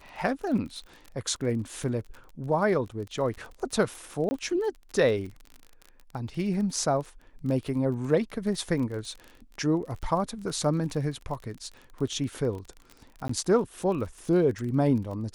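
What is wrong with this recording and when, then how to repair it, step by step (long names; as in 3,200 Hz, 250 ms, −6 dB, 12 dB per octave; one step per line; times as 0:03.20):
surface crackle 30 per second −35 dBFS
0:04.29–0:04.31: drop-out 20 ms
0:13.28–0:13.29: drop-out 14 ms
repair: click removal
repair the gap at 0:04.29, 20 ms
repair the gap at 0:13.28, 14 ms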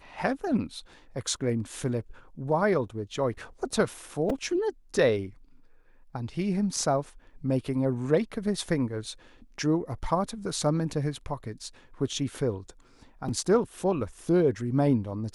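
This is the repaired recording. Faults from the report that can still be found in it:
none of them is left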